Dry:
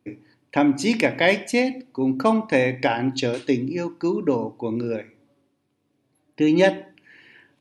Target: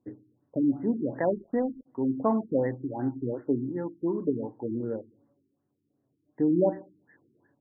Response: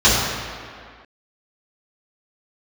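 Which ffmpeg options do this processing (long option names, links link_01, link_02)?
-filter_complex "[0:a]highshelf=frequency=2100:gain=-9.5,asplit=3[link_01][link_02][link_03];[link_01]afade=type=out:start_time=1.3:duration=0.02[link_04];[link_02]aeval=exprs='sgn(val(0))*max(abs(val(0))-0.00708,0)':channel_layout=same,afade=type=in:start_time=1.3:duration=0.02,afade=type=out:start_time=1.85:duration=0.02[link_05];[link_03]afade=type=in:start_time=1.85:duration=0.02[link_06];[link_04][link_05][link_06]amix=inputs=3:normalize=0,afftfilt=real='re*lt(b*sr/1024,410*pow(2100/410,0.5+0.5*sin(2*PI*2.7*pts/sr)))':imag='im*lt(b*sr/1024,410*pow(2100/410,0.5+0.5*sin(2*PI*2.7*pts/sr)))':win_size=1024:overlap=0.75,volume=-5.5dB"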